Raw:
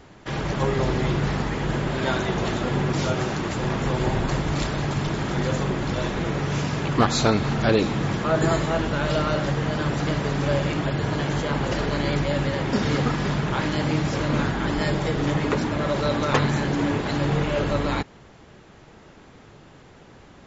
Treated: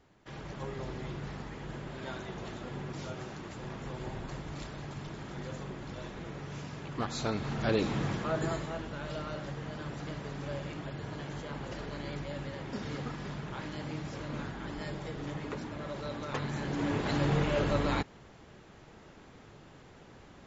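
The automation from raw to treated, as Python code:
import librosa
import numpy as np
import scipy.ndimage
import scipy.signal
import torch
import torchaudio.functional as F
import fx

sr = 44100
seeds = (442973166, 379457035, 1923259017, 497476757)

y = fx.gain(x, sr, db=fx.line((6.91, -16.5), (7.97, -7.0), (8.83, -15.5), (16.33, -15.5), (17.09, -5.5)))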